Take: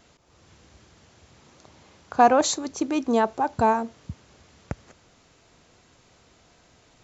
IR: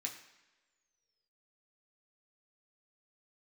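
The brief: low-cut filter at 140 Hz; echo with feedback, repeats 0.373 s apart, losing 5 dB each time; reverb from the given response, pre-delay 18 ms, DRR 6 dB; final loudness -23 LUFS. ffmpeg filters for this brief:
-filter_complex "[0:a]highpass=140,aecho=1:1:373|746|1119|1492|1865|2238|2611:0.562|0.315|0.176|0.0988|0.0553|0.031|0.0173,asplit=2[a][b];[1:a]atrim=start_sample=2205,adelay=18[c];[b][c]afir=irnorm=-1:irlink=0,volume=-5dB[d];[a][d]amix=inputs=2:normalize=0,volume=-1.5dB"

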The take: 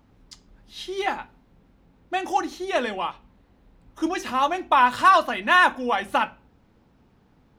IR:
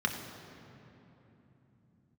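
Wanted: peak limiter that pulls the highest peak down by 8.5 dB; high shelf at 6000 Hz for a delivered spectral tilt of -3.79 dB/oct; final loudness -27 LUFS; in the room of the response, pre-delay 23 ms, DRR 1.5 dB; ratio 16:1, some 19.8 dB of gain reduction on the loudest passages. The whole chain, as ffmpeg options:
-filter_complex "[0:a]highshelf=f=6k:g=-3,acompressor=threshold=-31dB:ratio=16,alimiter=level_in=4.5dB:limit=-24dB:level=0:latency=1,volume=-4.5dB,asplit=2[a][b];[1:a]atrim=start_sample=2205,adelay=23[c];[b][c]afir=irnorm=-1:irlink=0,volume=-9.5dB[d];[a][d]amix=inputs=2:normalize=0,volume=10dB"

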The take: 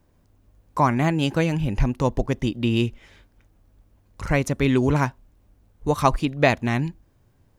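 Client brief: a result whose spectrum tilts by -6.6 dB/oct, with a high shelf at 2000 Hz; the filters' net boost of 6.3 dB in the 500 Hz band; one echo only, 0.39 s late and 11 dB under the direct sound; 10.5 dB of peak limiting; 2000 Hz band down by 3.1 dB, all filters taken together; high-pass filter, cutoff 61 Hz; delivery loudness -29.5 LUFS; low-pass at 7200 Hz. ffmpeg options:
-af "highpass=61,lowpass=7.2k,equalizer=f=500:t=o:g=8,highshelf=f=2k:g=3.5,equalizer=f=2k:t=o:g=-6.5,alimiter=limit=-10.5dB:level=0:latency=1,aecho=1:1:390:0.282,volume=-7dB"

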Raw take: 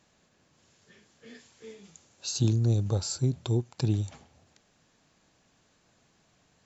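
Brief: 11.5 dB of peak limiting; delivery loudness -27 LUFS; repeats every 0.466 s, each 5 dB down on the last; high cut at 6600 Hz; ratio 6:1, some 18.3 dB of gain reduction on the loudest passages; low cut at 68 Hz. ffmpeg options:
-af "highpass=68,lowpass=6.6k,acompressor=threshold=-42dB:ratio=6,alimiter=level_in=15dB:limit=-24dB:level=0:latency=1,volume=-15dB,aecho=1:1:466|932|1398|1864|2330|2796|3262:0.562|0.315|0.176|0.0988|0.0553|0.031|0.0173,volume=22dB"

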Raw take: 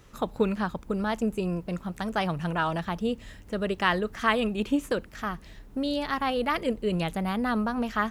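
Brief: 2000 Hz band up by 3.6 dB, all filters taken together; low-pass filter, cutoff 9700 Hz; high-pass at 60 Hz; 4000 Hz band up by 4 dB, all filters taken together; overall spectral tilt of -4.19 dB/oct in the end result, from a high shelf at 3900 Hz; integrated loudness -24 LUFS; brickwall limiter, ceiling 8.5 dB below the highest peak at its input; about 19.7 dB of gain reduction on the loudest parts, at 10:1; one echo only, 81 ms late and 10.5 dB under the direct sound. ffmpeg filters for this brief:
-af "highpass=60,lowpass=9.7k,equalizer=f=2k:t=o:g=4.5,highshelf=f=3.9k:g=-8.5,equalizer=f=4k:t=o:g=8.5,acompressor=threshold=-37dB:ratio=10,alimiter=level_in=7.5dB:limit=-24dB:level=0:latency=1,volume=-7.5dB,aecho=1:1:81:0.299,volume=18dB"

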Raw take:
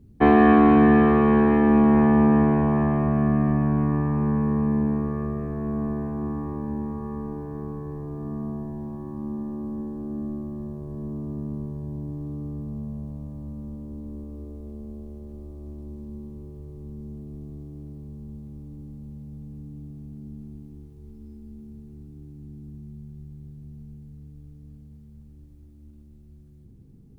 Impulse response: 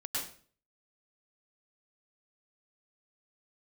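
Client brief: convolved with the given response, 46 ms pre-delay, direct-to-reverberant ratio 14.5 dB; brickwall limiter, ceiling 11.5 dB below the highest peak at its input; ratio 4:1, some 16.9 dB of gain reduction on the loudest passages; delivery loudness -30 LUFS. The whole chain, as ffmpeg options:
-filter_complex "[0:a]acompressor=threshold=-33dB:ratio=4,alimiter=level_in=8dB:limit=-24dB:level=0:latency=1,volume=-8dB,asplit=2[a][b];[1:a]atrim=start_sample=2205,adelay=46[c];[b][c]afir=irnorm=-1:irlink=0,volume=-17.5dB[d];[a][d]amix=inputs=2:normalize=0,volume=10.5dB"

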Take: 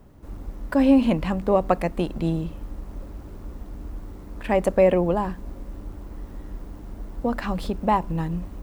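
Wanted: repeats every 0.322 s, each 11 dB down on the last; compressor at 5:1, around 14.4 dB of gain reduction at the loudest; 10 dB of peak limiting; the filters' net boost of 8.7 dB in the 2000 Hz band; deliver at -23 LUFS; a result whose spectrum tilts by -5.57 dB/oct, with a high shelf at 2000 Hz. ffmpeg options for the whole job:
-af "highshelf=f=2k:g=3.5,equalizer=f=2k:t=o:g=8.5,acompressor=threshold=-28dB:ratio=5,alimiter=limit=-23.5dB:level=0:latency=1,aecho=1:1:322|644|966:0.282|0.0789|0.0221,volume=13dB"

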